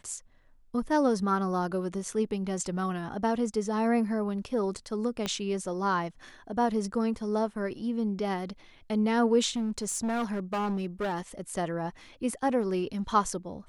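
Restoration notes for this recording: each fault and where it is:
5.26 pop -16 dBFS
9.51–11.2 clipped -26.5 dBFS

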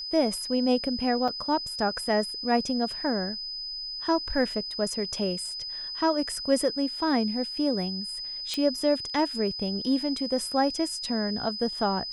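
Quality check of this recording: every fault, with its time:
tone 5000 Hz -33 dBFS
1.28 gap 5 ms
8.54 pop -15 dBFS

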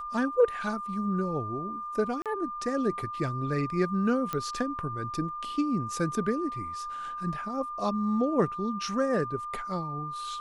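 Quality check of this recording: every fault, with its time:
tone 1200 Hz -34 dBFS
2.22–2.26 gap 37 ms
4.33 pop -17 dBFS

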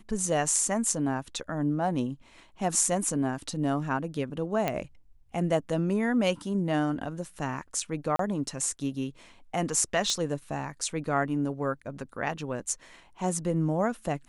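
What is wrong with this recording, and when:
4.68 pop -14 dBFS
8.16–8.19 gap 33 ms
10.1 pop -15 dBFS

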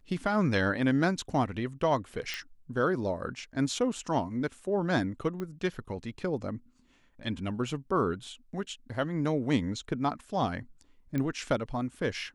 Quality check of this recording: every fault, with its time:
2.34 pop -19 dBFS
5.4 pop -24 dBFS
11.18 pop -20 dBFS

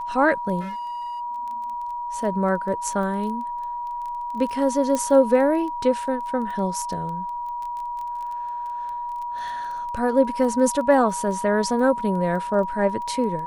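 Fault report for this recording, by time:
crackle 14/s -31 dBFS
tone 960 Hz -27 dBFS
0.6–1.21 clipped -28.5 dBFS
4.95 pop -12 dBFS

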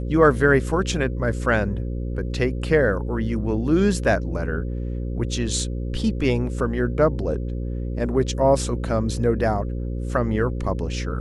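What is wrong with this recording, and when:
buzz 60 Hz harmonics 9 -27 dBFS

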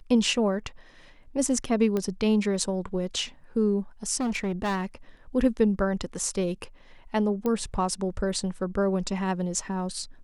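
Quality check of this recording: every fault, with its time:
1.97 pop -16 dBFS
4.2–4.86 clipped -24 dBFS
7.46 pop -16 dBFS

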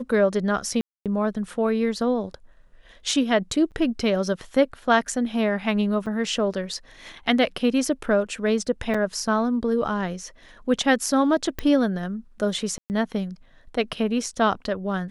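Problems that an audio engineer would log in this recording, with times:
0.81–1.06 gap 0.247 s
3.71–3.72 gap 8.2 ms
6.06–6.07 gap 5.7 ms
8.94 gap 4.8 ms
11.59 pop -13 dBFS
12.78–12.9 gap 0.119 s

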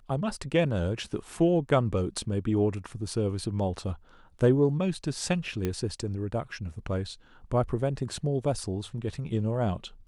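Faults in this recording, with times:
5.65 pop -16 dBFS

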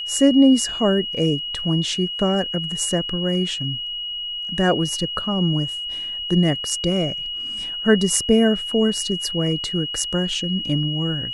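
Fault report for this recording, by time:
tone 2900 Hz -26 dBFS

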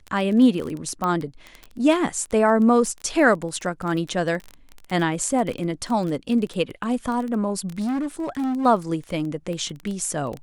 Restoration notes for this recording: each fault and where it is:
crackle 16/s -26 dBFS
1.04 pop -13 dBFS
7.78–8.66 clipped -22 dBFS

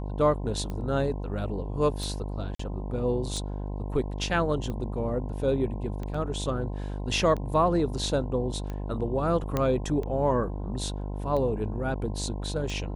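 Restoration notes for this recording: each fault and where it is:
buzz 50 Hz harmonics 21 -33 dBFS
tick 45 rpm -23 dBFS
2.55–2.59 gap 44 ms
6.14 gap 4.6 ms
9.57 pop -13 dBFS

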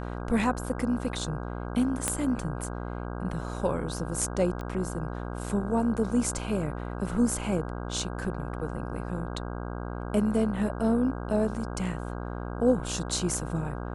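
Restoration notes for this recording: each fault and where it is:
buzz 60 Hz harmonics 27 -35 dBFS
2.08 pop -11 dBFS
4.61 pop -24 dBFS

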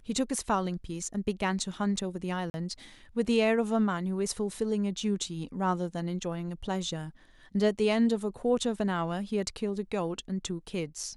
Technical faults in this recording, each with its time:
2.5–2.54 gap 41 ms

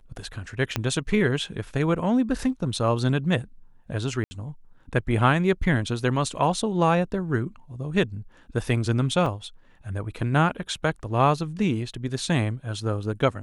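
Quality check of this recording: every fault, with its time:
0.76 pop -9 dBFS
4.24–4.31 gap 70 ms
9.26 gap 3.4 ms

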